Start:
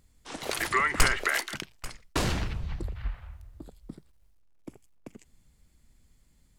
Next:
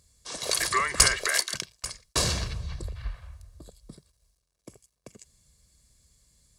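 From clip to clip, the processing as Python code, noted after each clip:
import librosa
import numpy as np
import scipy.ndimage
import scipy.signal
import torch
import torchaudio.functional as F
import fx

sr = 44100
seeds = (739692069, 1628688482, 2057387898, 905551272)

y = scipy.signal.sosfilt(scipy.signal.butter(2, 46.0, 'highpass', fs=sr, output='sos'), x)
y = fx.band_shelf(y, sr, hz=6500.0, db=10.5, octaves=1.7)
y = y + 0.5 * np.pad(y, (int(1.8 * sr / 1000.0), 0))[:len(y)]
y = F.gain(torch.from_numpy(y), -1.5).numpy()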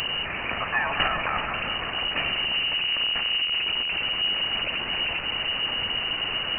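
y = fx.delta_mod(x, sr, bps=32000, step_db=-20.5)
y = y + 10.0 ** (-10.0 / 20.0) * np.pad(y, (int(381 * sr / 1000.0), 0))[:len(y)]
y = fx.freq_invert(y, sr, carrier_hz=2900)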